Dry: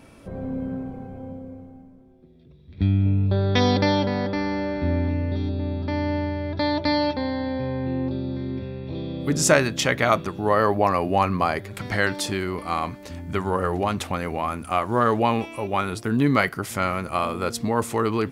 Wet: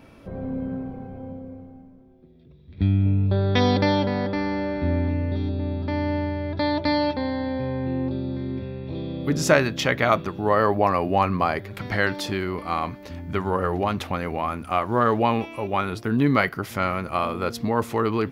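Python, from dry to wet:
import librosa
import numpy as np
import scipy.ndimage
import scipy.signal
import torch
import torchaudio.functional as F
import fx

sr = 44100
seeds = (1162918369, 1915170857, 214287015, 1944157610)

y = fx.peak_eq(x, sr, hz=8400.0, db=-12.0, octaves=0.81)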